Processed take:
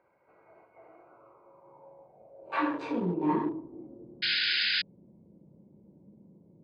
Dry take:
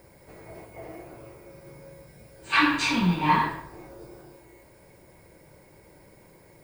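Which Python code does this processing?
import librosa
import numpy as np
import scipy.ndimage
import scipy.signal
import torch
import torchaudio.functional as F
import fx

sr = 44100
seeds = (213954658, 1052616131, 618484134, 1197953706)

y = fx.wiener(x, sr, points=25)
y = fx.filter_sweep_bandpass(y, sr, from_hz=1600.0, to_hz=210.0, start_s=0.89, end_s=4.22, q=4.3)
y = fx.spec_paint(y, sr, seeds[0], shape='noise', start_s=4.22, length_s=0.6, low_hz=1400.0, high_hz=5100.0, level_db=-37.0)
y = y * librosa.db_to_amplitude(9.0)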